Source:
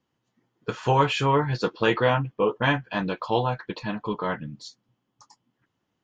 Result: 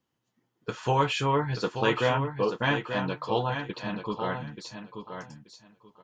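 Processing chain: treble shelf 5.7 kHz +6 dB; feedback delay 882 ms, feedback 18%, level -8 dB; trim -4 dB

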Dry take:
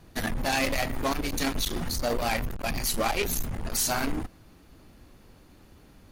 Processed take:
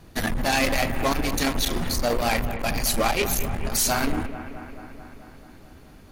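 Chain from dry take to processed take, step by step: bucket-brigade echo 218 ms, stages 4096, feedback 71%, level -12 dB; trim +4 dB

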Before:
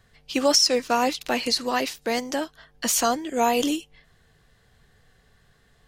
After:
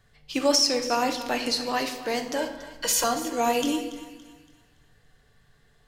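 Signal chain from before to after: 2.36–3.04 s: comb 2 ms, depth 93%; thinning echo 283 ms, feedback 39%, high-pass 640 Hz, level -14.5 dB; on a send at -5.5 dB: reverberation RT60 1.0 s, pre-delay 7 ms; on the sum: trim -3.5 dB

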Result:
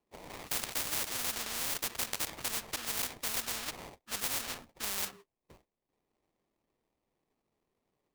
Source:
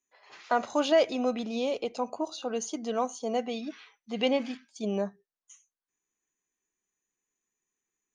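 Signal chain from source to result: rippled Chebyshev low-pass 3.1 kHz, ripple 3 dB; sample-rate reducer 1.5 kHz, jitter 20%; spectrum-flattening compressor 10:1

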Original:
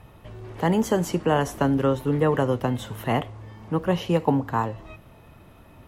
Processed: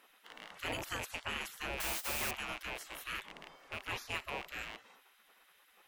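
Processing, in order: rattle on loud lows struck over -36 dBFS, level -27 dBFS; 1.80–2.31 s: word length cut 6-bit, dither triangular; spectral gate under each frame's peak -20 dB weak; trim -3 dB

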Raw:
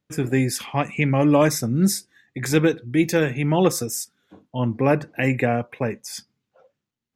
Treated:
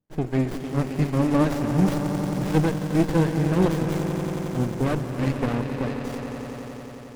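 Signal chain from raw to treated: harmonic tremolo 5 Hz, crossover 640 Hz; echo with a slow build-up 89 ms, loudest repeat 5, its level -12 dB; sliding maximum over 33 samples

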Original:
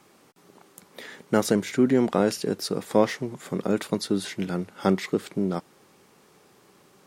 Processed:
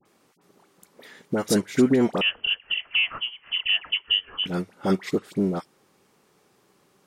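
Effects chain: peak limiter -14 dBFS, peak gain reduction 7.5 dB; phase dispersion highs, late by 55 ms, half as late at 1.4 kHz; 2.21–4.46 s: frequency inversion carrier 3.2 kHz; upward expansion 1.5:1, over -40 dBFS; trim +5 dB

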